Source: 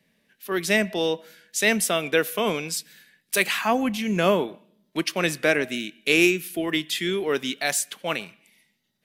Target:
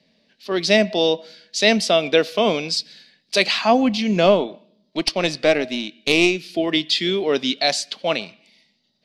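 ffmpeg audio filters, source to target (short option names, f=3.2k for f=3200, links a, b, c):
-filter_complex "[0:a]lowpass=f=4.6k:t=q:w=4.2,asettb=1/sr,asplit=3[a][b][c];[a]atrim=end=4.264[d];[b]atrim=start=4.26:end=6.49,asetpts=PTS-STARTPTS,afade=t=in:d=0.004:c=qsin,afade=t=out:st=2.226:d=0.004:c=qsin,aeval=exprs='(tanh(2*val(0)+0.55)-tanh(0.55))/2':c=same[e];[c]atrim=start=6.486[f];[d][e]acrossfade=d=0.004:c1=hsin:c2=qsin[g];[g][f]acrossfade=d=0.004:c1=qsin:c2=hsin,equalizer=f=250:t=o:w=0.67:g=5,equalizer=f=630:t=o:w=0.67:g=8,equalizer=f=1.6k:t=o:w=0.67:g=-5,volume=1.5dB"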